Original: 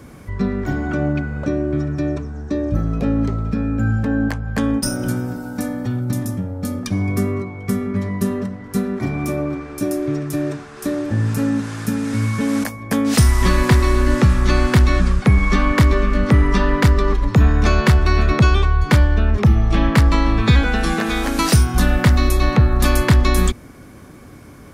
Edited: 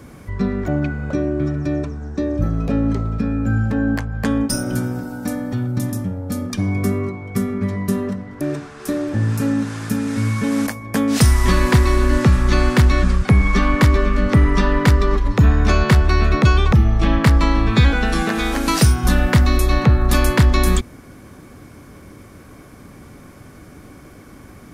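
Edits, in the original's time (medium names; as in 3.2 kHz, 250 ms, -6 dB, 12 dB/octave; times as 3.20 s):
0.68–1.01 s: delete
8.74–10.38 s: delete
18.69–19.43 s: delete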